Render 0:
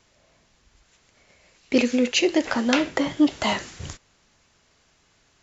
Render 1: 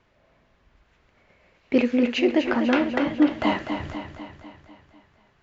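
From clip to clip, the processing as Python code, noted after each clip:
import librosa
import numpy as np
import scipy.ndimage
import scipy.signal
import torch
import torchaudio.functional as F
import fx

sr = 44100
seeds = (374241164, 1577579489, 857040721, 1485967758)

y = scipy.signal.sosfilt(scipy.signal.butter(2, 2300.0, 'lowpass', fs=sr, output='sos'), x)
y = fx.echo_feedback(y, sr, ms=248, feedback_pct=56, wet_db=-8)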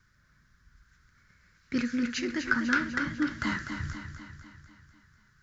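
y = fx.curve_eq(x, sr, hz=(150.0, 720.0, 1500.0, 2700.0, 5200.0), db=(0, -27, 5, -14, 5))
y = F.gain(torch.from_numpy(y), 1.0).numpy()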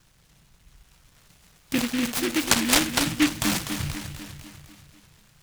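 y = x + 0.34 * np.pad(x, (int(6.2 * sr / 1000.0), 0))[:len(x)]
y = fx.noise_mod_delay(y, sr, seeds[0], noise_hz=2200.0, depth_ms=0.22)
y = F.gain(torch.from_numpy(y), 6.0).numpy()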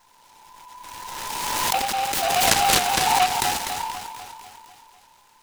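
y = fx.band_invert(x, sr, width_hz=1000)
y = fx.pre_swell(y, sr, db_per_s=22.0)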